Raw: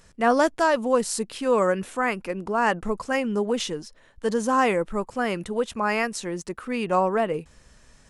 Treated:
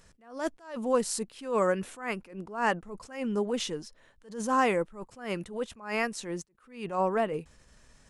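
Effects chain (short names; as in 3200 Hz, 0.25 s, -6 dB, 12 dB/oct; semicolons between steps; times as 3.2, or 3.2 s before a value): attack slew limiter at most 130 dB/s; gain -4 dB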